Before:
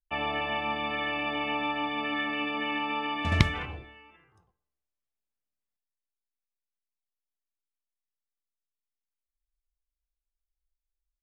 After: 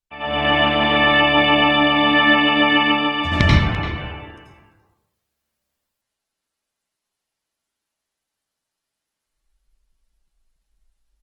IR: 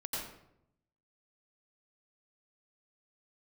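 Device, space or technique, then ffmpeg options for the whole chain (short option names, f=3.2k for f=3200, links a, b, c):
speakerphone in a meeting room: -filter_complex "[0:a]asettb=1/sr,asplit=3[a][b][c];[a]atrim=end=3.284[d];[b]atrim=start=3.28:end=3.91,asetpts=PTS-STARTPTS,afade=t=in:d=0.004:c=qsin,afade=t=out:st=0.626:d=0.004:c=qsin,lowpass=6.7k[e];[c]atrim=start=3.906[f];[d][e]acrossfade=d=0.004:c1=hsin:c2=qsin[g];[g][f]acrossfade=d=0.004:c1=qsin:c2=hsin[h];[1:a]atrim=start_sample=2205[i];[h][i]afir=irnorm=-1:irlink=0,asplit=2[j][k];[k]adelay=340,highpass=300,lowpass=3.4k,asoftclip=type=hard:threshold=-16.5dB,volume=-12dB[l];[j][l]amix=inputs=2:normalize=0,dynaudnorm=f=150:g=5:m=15dB" -ar 48000 -c:a libopus -b:a 20k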